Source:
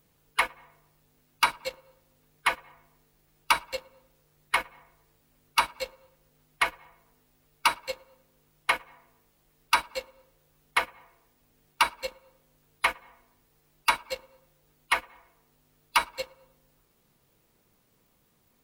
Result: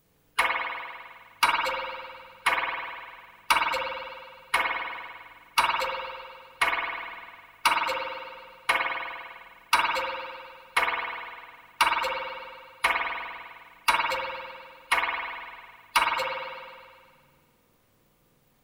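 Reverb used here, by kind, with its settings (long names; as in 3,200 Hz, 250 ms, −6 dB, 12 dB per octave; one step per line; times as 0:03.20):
spring reverb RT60 1.8 s, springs 50 ms, chirp 80 ms, DRR −1 dB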